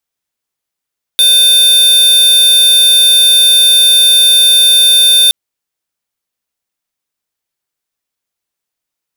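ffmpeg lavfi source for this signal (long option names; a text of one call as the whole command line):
ffmpeg -f lavfi -i "aevalsrc='0.473*(2*lt(mod(3590*t,1),0.5)-1)':duration=4.12:sample_rate=44100" out.wav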